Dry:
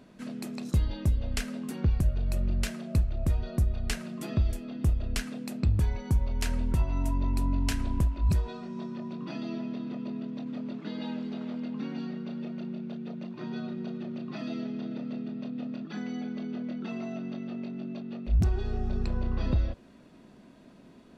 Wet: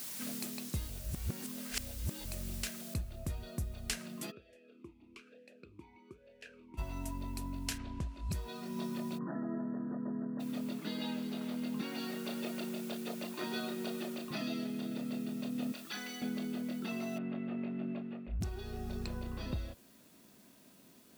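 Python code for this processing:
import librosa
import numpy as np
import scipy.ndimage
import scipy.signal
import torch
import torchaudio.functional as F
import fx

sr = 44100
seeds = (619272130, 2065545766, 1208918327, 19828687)

y = fx.noise_floor_step(x, sr, seeds[0], at_s=2.94, before_db=-48, after_db=-65, tilt_db=0.0)
y = fx.vowel_sweep(y, sr, vowels='e-u', hz=1.1, at=(4.3, 6.77), fade=0.02)
y = fx.lowpass(y, sr, hz=fx.line((7.77, 3800.0), (8.3, 7500.0)), slope=12, at=(7.77, 8.3), fade=0.02)
y = fx.brickwall_lowpass(y, sr, high_hz=1900.0, at=(9.17, 10.39), fade=0.02)
y = fx.highpass(y, sr, hz=330.0, slope=12, at=(11.81, 14.31))
y = fx.highpass(y, sr, hz=1200.0, slope=6, at=(15.72, 16.22))
y = fx.lowpass(y, sr, hz=2500.0, slope=24, at=(17.18, 18.41))
y = fx.edit(y, sr, fx.reverse_span(start_s=0.9, length_s=1.35), tone=tone)
y = fx.high_shelf(y, sr, hz=2600.0, db=9.5)
y = fx.rider(y, sr, range_db=10, speed_s=0.5)
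y = fx.highpass(y, sr, hz=83.0, slope=6)
y = y * librosa.db_to_amplitude(-6.5)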